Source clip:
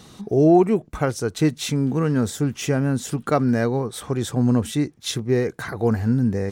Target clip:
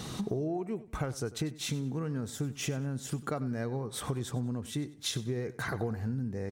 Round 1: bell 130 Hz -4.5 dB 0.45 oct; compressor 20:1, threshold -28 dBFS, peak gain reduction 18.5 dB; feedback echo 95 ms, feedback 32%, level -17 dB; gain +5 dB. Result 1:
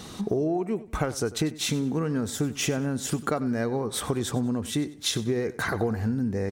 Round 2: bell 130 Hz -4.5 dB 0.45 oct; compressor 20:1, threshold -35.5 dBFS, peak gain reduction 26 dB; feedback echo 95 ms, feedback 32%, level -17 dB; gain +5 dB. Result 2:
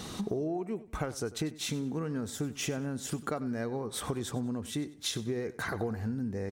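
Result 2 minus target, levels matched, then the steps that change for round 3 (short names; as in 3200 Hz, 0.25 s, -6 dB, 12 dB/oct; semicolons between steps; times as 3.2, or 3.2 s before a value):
125 Hz band -3.5 dB
change: bell 130 Hz +4 dB 0.45 oct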